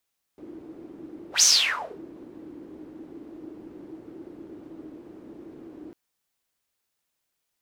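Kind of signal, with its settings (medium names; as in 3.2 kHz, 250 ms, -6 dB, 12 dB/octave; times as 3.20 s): whoosh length 5.55 s, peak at 1.04 s, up 0.12 s, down 0.63 s, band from 320 Hz, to 6.2 kHz, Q 8.3, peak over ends 26 dB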